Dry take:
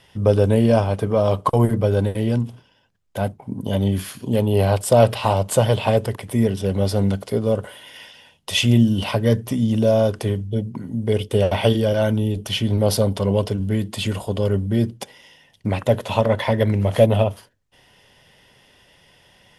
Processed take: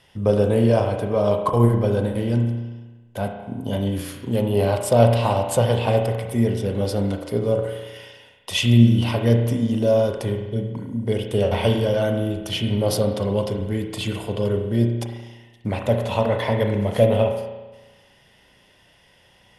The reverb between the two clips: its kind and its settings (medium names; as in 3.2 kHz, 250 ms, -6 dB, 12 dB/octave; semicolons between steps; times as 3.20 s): spring tank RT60 1.2 s, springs 34 ms, chirp 55 ms, DRR 4 dB; trim -3 dB